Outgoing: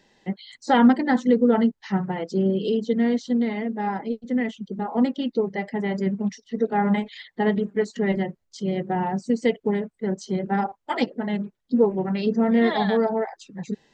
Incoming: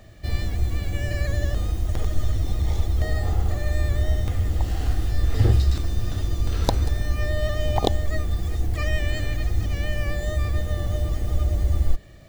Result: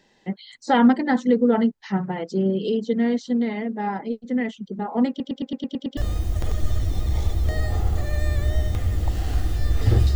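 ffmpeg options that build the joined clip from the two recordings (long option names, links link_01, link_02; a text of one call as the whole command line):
ffmpeg -i cue0.wav -i cue1.wav -filter_complex "[0:a]apad=whole_dur=10.15,atrim=end=10.15,asplit=8[link_01][link_02][link_03][link_04][link_05][link_06][link_07][link_08];[link_01]atrim=end=5.202[link_09];[link_02]atrim=start=5.088:end=5.202[link_10];[link_03]atrim=start=5.088:end=5.202[link_11];[link_04]atrim=start=5.088:end=5.202[link_12];[link_05]atrim=start=5.088:end=5.202[link_13];[link_06]atrim=start=5.088:end=5.202[link_14];[link_07]atrim=start=5.088:end=5.202[link_15];[link_08]atrim=start=5.088:end=5.202[link_16];[1:a]atrim=start=1.498:end=5.68[link_17];[link_09][link_10]acrossfade=duration=0.004:curve1=hsin:curve2=hsin[link_18];[link_18][link_11]acrossfade=duration=0.004:curve1=hsin:curve2=hsin[link_19];[link_19][link_12]acrossfade=duration=0.004:curve1=hsin:curve2=hsin[link_20];[link_20][link_13]acrossfade=duration=0.004:curve1=hsin:curve2=hsin[link_21];[link_21][link_14]acrossfade=duration=0.004:curve1=hsin:curve2=hsin[link_22];[link_22][link_15]acrossfade=duration=0.004:curve1=hsin:curve2=hsin[link_23];[link_23][link_16]acrossfade=duration=0.004:curve1=hsin:curve2=hsin[link_24];[link_24][link_17]acrossfade=duration=0.004:curve1=hsin:curve2=hsin" out.wav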